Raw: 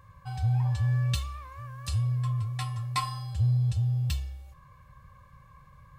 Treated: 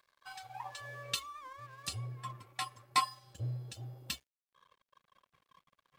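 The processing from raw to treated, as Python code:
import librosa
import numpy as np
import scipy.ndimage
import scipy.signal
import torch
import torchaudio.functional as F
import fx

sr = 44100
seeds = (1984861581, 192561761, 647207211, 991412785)

y = fx.filter_sweep_highpass(x, sr, from_hz=1600.0, to_hz=270.0, start_s=0.11, end_s=1.53, q=1.4)
y = fx.dereverb_blind(y, sr, rt60_s=1.9)
y = np.sign(y) * np.maximum(np.abs(y) - 10.0 ** (-59.5 / 20.0), 0.0)
y = y * 10.0 ** (1.0 / 20.0)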